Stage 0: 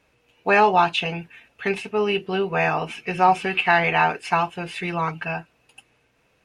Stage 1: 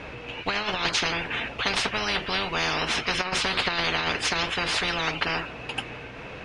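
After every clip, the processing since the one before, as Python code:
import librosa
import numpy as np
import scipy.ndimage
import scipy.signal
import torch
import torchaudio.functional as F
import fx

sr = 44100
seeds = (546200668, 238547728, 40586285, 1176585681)

y = scipy.signal.sosfilt(scipy.signal.butter(2, 3400.0, 'lowpass', fs=sr, output='sos'), x)
y = fx.over_compress(y, sr, threshold_db=-20.0, ratio=-0.5)
y = fx.spectral_comp(y, sr, ratio=10.0)
y = y * librosa.db_to_amplitude(-3.0)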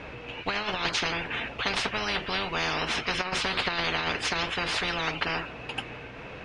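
y = fx.high_shelf(x, sr, hz=6200.0, db=-5.5)
y = y * librosa.db_to_amplitude(-2.0)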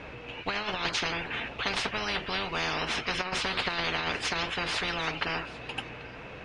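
y = x + 10.0 ** (-20.0 / 20.0) * np.pad(x, (int(785 * sr / 1000.0), 0))[:len(x)]
y = y * librosa.db_to_amplitude(-2.0)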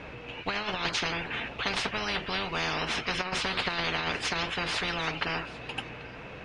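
y = fx.peak_eq(x, sr, hz=170.0, db=2.0, octaves=0.77)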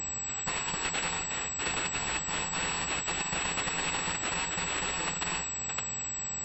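y = fx.bit_reversed(x, sr, seeds[0], block=128)
y = fx.small_body(y, sr, hz=(320.0, 780.0, 2600.0), ring_ms=45, db=10)
y = fx.pwm(y, sr, carrier_hz=7800.0)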